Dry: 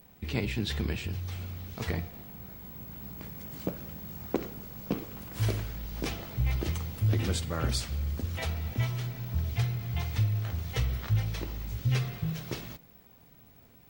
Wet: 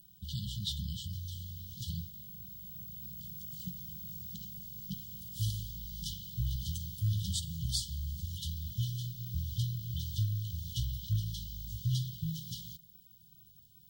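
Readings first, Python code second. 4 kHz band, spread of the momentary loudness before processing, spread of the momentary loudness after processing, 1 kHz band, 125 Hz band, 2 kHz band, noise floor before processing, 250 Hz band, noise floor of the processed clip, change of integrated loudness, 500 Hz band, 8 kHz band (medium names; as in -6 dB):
-0.5 dB, 11 LU, 10 LU, under -40 dB, -5.0 dB, under -40 dB, -57 dBFS, -9.0 dB, -60 dBFS, -5.0 dB, under -40 dB, 0.0 dB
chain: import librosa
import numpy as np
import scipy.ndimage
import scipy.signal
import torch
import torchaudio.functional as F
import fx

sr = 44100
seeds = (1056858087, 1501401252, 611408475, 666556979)

y = fx.brickwall_bandstop(x, sr, low_hz=200.0, high_hz=2900.0)
y = fx.low_shelf(y, sr, hz=140.0, db=-8.0)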